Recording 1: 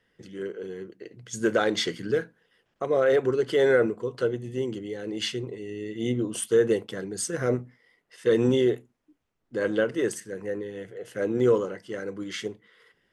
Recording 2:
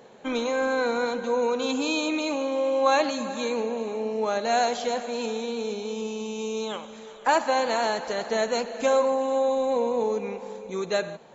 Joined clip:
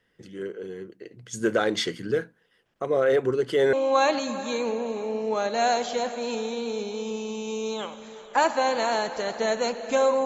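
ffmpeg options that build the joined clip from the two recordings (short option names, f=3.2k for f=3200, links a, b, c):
-filter_complex "[0:a]apad=whole_dur=10.25,atrim=end=10.25,atrim=end=3.732[a];[1:a]atrim=start=2.638:end=9.16[b];[a][b]acrossfade=d=0.004:c1=hsin:c2=hsin"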